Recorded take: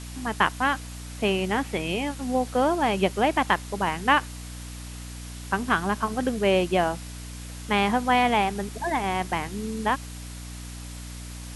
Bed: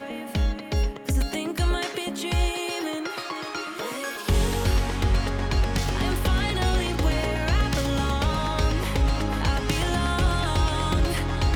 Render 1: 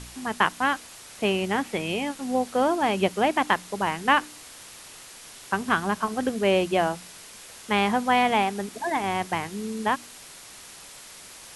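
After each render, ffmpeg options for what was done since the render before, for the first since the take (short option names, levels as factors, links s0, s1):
-af "bandreject=f=60:t=h:w=4,bandreject=f=120:t=h:w=4,bandreject=f=180:t=h:w=4,bandreject=f=240:t=h:w=4,bandreject=f=300:t=h:w=4"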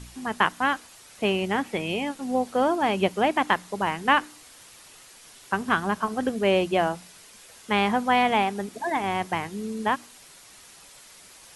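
-af "afftdn=nr=6:nf=-45"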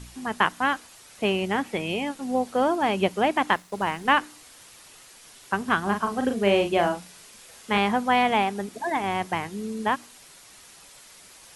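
-filter_complex "[0:a]asettb=1/sr,asplit=3[s0][s1][s2];[s0]atrim=end=3.564[s3];[s1]atrim=start=3.56:end=4.13,asetpts=PTS-STARTPTS,afade=t=in:d=0.004:c=qsin,afade=t=out:st=0.566:d=0.004:c=qsin,aeval=exprs='sgn(val(0))*max(abs(val(0))-0.00335,0)':c=same[s4];[s2]atrim=start=4.126[s5];[s3][s4]acrossfade=d=0.004:c1=hsin:c2=qsin[s6];[s6][s5]acrossfade=d=0.004:c1=qsin:c2=hsin,asettb=1/sr,asplit=3[s7][s8][s9];[s7]atrim=end=5.824[s10];[s8]atrim=start=5.82:end=7.78,asetpts=PTS-STARTPTS,afade=t=in:d=0.004:c=qsin,afade=t=out:st=1.956:d=0.004:c=qsin,asplit=2[s11][s12];[s12]adelay=40,volume=0.501[s13];[s11][s13]amix=inputs=2:normalize=0,atrim=end_sample=86436[s14];[s9]atrim=start=7.776[s15];[s10][s14]acrossfade=d=0.004:c1=hsin:c2=qsin[s16];[s16][s15]acrossfade=d=0.004:c1=qsin:c2=hsin"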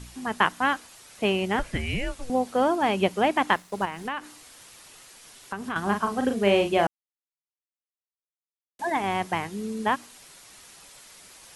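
-filter_complex "[0:a]asettb=1/sr,asplit=3[s0][s1][s2];[s0]atrim=end=1.594[s3];[s1]atrim=start=1.59:end=2.3,asetpts=PTS-STARTPTS,afade=t=in:d=0.004:c=qsin,afade=t=out:st=0.706:d=0.004:c=qsin,afreqshift=-250[s4];[s2]atrim=start=2.296[s5];[s3][s4]acrossfade=d=0.004:c1=hsin:c2=qsin[s6];[s6][s5]acrossfade=d=0.004:c1=qsin:c2=hsin,asettb=1/sr,asplit=3[s7][s8][s9];[s7]atrim=end=3.854[s10];[s8]atrim=start=3.85:end=5.76,asetpts=PTS-STARTPTS,afade=t=in:d=0.004:c=qsin,afade=t=out:st=1.906:d=0.004:c=qsin,acompressor=threshold=0.0316:ratio=3:attack=3.2:release=140:knee=1:detection=peak[s11];[s9]atrim=start=5.756[s12];[s10][s11]acrossfade=d=0.004:c1=hsin:c2=qsin[s13];[s13][s12]acrossfade=d=0.004:c1=qsin:c2=hsin,asplit=3[s14][s15][s16];[s14]atrim=end=6.87,asetpts=PTS-STARTPTS,afade=t=out:st=6.866:d=0.004:c=hsin[s17];[s15]atrim=start=6.87:end=8.79,asetpts=PTS-STARTPTS,volume=0[s18];[s16]atrim=start=8.79,asetpts=PTS-STARTPTS,afade=t=in:d=0.004:c=hsin[s19];[s17][s18][s19]concat=n=3:v=0:a=1"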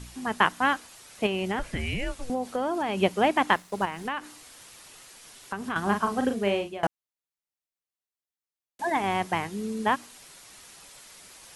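-filter_complex "[0:a]asettb=1/sr,asplit=3[s0][s1][s2];[s0]atrim=end=1.264[s3];[s1]atrim=start=1.26:end=2.98,asetpts=PTS-STARTPTS,afade=t=in:d=0.004:c=qsin,afade=t=out:st=1.716:d=0.004:c=qsin,acompressor=threshold=0.0631:ratio=6:attack=3.2:release=140:knee=1:detection=peak[s4];[s2]atrim=start=2.976[s5];[s3][s4]acrossfade=d=0.004:c1=hsin:c2=qsin[s6];[s6][s5]acrossfade=d=0.004:c1=qsin:c2=hsin,asplit=2[s7][s8];[s7]atrim=end=6.83,asetpts=PTS-STARTPTS,afade=t=out:st=6.19:d=0.64:silence=0.0891251[s9];[s8]atrim=start=6.83,asetpts=PTS-STARTPTS,afade=t=in:d=0.004:c=hsin:silence=0.0891251[s10];[s9][s10]concat=n=2:v=0:a=1"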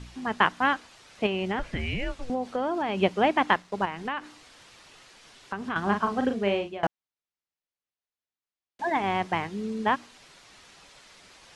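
-af "lowpass=4900"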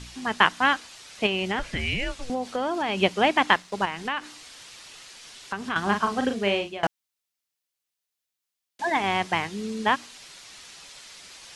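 -af "highshelf=f=2300:g=11.5"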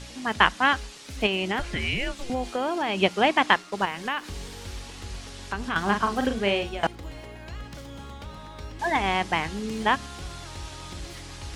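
-filter_complex "[1:a]volume=0.158[s0];[0:a][s0]amix=inputs=2:normalize=0"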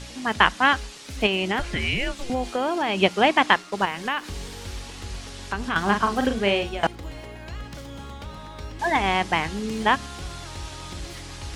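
-af "volume=1.33,alimiter=limit=0.891:level=0:latency=1"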